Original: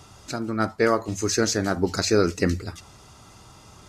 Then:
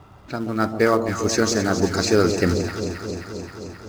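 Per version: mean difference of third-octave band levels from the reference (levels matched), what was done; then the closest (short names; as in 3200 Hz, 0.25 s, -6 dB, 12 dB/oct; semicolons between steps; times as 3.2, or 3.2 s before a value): 6.5 dB: low-pass opened by the level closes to 1700 Hz, open at -20.5 dBFS; high shelf 7600 Hz -4.5 dB; in parallel at -11 dB: companded quantiser 4-bit; on the sum: echo with dull and thin repeats by turns 0.132 s, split 860 Hz, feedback 85%, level -7.5 dB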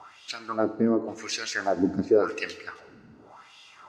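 9.0 dB: wah 0.9 Hz 210–3200 Hz, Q 3.6; in parallel at +3 dB: limiter -23.5 dBFS, peak gain reduction 9.5 dB; on the sum: FDN reverb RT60 1.5 s, low-frequency decay 0.8×, high-frequency decay 0.9×, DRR 13 dB; vocal rider within 4 dB 2 s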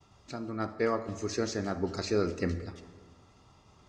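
4.0 dB: notch 1500 Hz, Q 9.4; expander -45 dBFS; air absorption 96 m; plate-style reverb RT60 1.7 s, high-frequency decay 0.5×, pre-delay 0 ms, DRR 10.5 dB; gain -8.5 dB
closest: third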